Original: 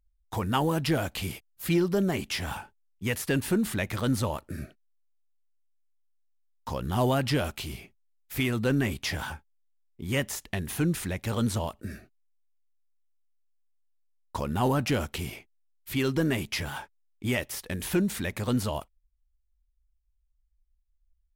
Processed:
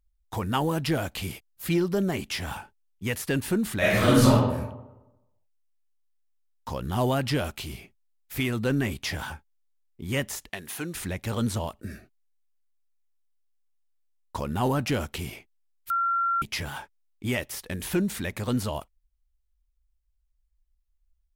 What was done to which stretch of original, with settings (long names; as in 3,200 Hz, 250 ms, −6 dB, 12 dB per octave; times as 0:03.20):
0:03.78–0:04.31: thrown reverb, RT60 1 s, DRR −10.5 dB
0:10.49–0:10.95: high-pass filter 610 Hz 6 dB per octave
0:15.90–0:16.42: beep over 1,370 Hz −22 dBFS